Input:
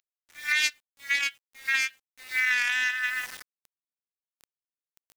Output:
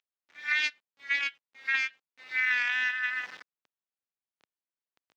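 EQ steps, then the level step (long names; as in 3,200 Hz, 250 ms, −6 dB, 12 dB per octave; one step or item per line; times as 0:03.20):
Bessel high-pass filter 210 Hz, order 2
high-frequency loss of the air 210 metres
0.0 dB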